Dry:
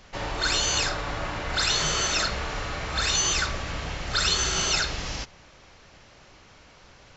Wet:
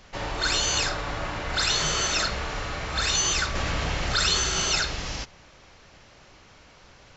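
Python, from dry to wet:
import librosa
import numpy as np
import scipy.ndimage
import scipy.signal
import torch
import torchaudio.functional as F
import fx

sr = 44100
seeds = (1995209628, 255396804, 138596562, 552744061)

y = fx.env_flatten(x, sr, amount_pct=50, at=(3.55, 4.39))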